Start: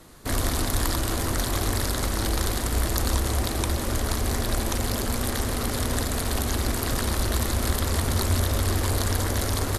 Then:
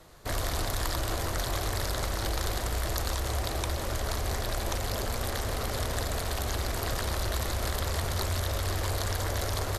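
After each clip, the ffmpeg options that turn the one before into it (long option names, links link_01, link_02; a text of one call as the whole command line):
ffmpeg -i in.wav -filter_complex "[0:a]equalizer=frequency=250:width_type=o:width=0.67:gain=-9,equalizer=frequency=630:width_type=o:width=0.67:gain=4,equalizer=frequency=10000:width_type=o:width=0.67:gain=-6,acrossover=split=1100[link_01][link_02];[link_01]alimiter=limit=-20dB:level=0:latency=1[link_03];[link_03][link_02]amix=inputs=2:normalize=0,volume=-3.5dB" out.wav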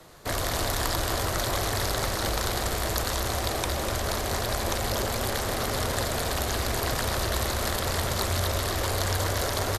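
ffmpeg -i in.wav -filter_complex "[0:a]acrossover=split=100[link_01][link_02];[link_02]acontrast=72[link_03];[link_01][link_03]amix=inputs=2:normalize=0,aecho=1:1:247:0.473,volume=-2.5dB" out.wav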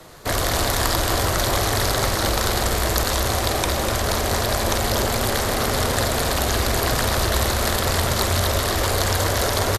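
ffmpeg -i in.wav -filter_complex "[0:a]asplit=2[link_01][link_02];[link_02]adelay=49,volume=-11.5dB[link_03];[link_01][link_03]amix=inputs=2:normalize=0,volume=6.5dB" out.wav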